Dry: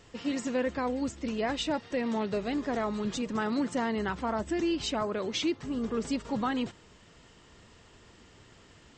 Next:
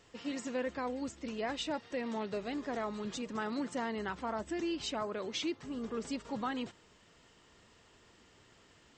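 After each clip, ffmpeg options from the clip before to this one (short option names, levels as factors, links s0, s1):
-af "lowshelf=f=200:g=-6.5,volume=0.562"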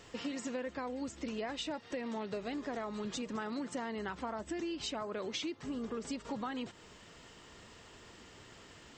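-af "acompressor=threshold=0.00631:ratio=6,volume=2.37"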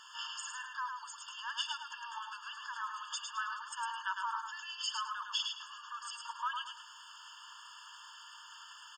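-filter_complex "[0:a]asplit=2[s0][s1];[s1]aecho=0:1:106|212|318:0.562|0.141|0.0351[s2];[s0][s2]amix=inputs=2:normalize=0,afftfilt=real='re*eq(mod(floor(b*sr/1024/900),2),1)':imag='im*eq(mod(floor(b*sr/1024/900),2),1)':win_size=1024:overlap=0.75,volume=2.11"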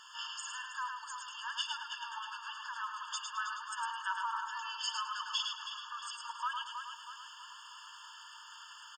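-filter_complex "[0:a]asplit=2[s0][s1];[s1]adelay=319,lowpass=f=4200:p=1,volume=0.447,asplit=2[s2][s3];[s3]adelay=319,lowpass=f=4200:p=1,volume=0.5,asplit=2[s4][s5];[s5]adelay=319,lowpass=f=4200:p=1,volume=0.5,asplit=2[s6][s7];[s7]adelay=319,lowpass=f=4200:p=1,volume=0.5,asplit=2[s8][s9];[s9]adelay=319,lowpass=f=4200:p=1,volume=0.5,asplit=2[s10][s11];[s11]adelay=319,lowpass=f=4200:p=1,volume=0.5[s12];[s0][s2][s4][s6][s8][s10][s12]amix=inputs=7:normalize=0"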